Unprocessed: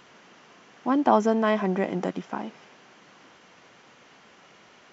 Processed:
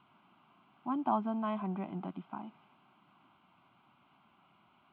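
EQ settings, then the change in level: HPF 62 Hz; air absorption 490 m; fixed phaser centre 1800 Hz, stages 6; -6.5 dB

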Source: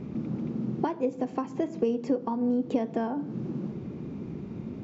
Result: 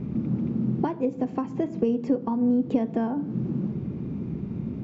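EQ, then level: tone controls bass +9 dB, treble -5 dB; notches 50/100/150 Hz; 0.0 dB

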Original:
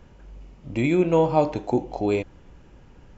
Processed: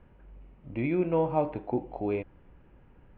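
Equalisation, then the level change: LPF 2600 Hz 24 dB/oct; -7.0 dB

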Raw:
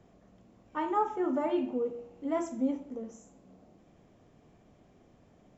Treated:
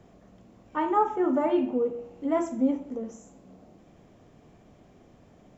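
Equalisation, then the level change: dynamic EQ 5300 Hz, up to -5 dB, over -58 dBFS, Q 0.72; +5.5 dB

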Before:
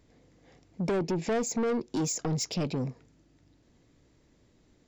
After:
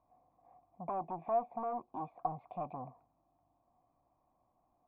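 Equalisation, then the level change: vocal tract filter a; bell 430 Hz -9.5 dB 0.37 oct; +9.5 dB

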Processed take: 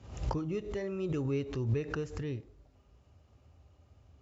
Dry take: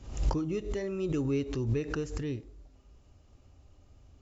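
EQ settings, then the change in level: HPF 62 Hz 24 dB/oct; LPF 3200 Hz 6 dB/oct; bell 290 Hz -5 dB 0.79 oct; 0.0 dB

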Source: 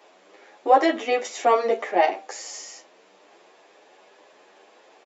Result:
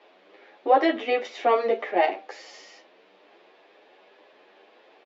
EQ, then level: HPF 170 Hz; LPF 4100 Hz 24 dB/oct; bell 990 Hz -3.5 dB 1.4 oct; 0.0 dB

